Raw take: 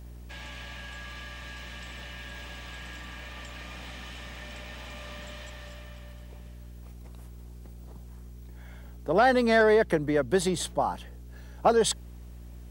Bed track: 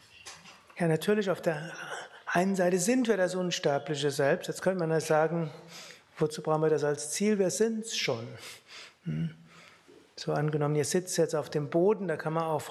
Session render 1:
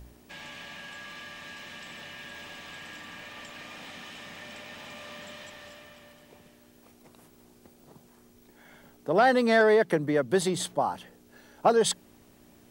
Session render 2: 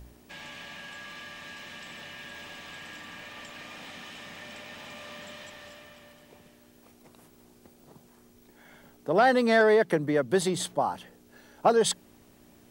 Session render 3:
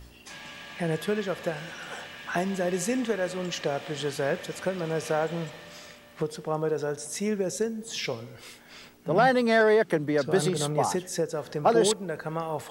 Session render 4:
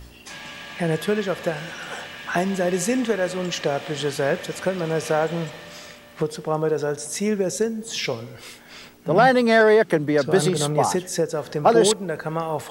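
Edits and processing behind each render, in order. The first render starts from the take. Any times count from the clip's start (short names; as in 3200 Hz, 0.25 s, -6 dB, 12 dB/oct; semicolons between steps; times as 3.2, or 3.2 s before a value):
de-hum 60 Hz, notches 3
nothing audible
add bed track -1.5 dB
gain +5.5 dB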